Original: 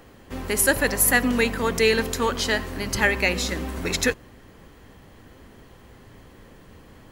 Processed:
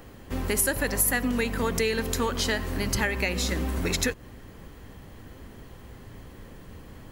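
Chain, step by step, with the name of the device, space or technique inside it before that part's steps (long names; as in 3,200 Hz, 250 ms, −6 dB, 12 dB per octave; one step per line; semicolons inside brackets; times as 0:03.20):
ASMR close-microphone chain (low-shelf EQ 190 Hz +5.5 dB; downward compressor 5 to 1, threshold −23 dBFS, peak gain reduction 9 dB; high-shelf EQ 11,000 Hz +5.5 dB)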